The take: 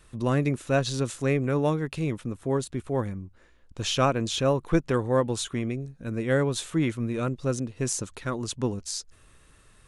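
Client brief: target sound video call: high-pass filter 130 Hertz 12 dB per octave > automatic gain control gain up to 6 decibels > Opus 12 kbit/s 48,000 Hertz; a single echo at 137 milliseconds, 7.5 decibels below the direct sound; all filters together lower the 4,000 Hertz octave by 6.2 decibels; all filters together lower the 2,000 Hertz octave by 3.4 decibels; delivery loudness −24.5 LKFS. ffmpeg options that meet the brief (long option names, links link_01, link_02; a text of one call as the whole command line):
ffmpeg -i in.wav -af "highpass=130,equalizer=frequency=2000:width_type=o:gain=-3,equalizer=frequency=4000:width_type=o:gain=-7,aecho=1:1:137:0.422,dynaudnorm=maxgain=6dB,volume=4dB" -ar 48000 -c:a libopus -b:a 12k out.opus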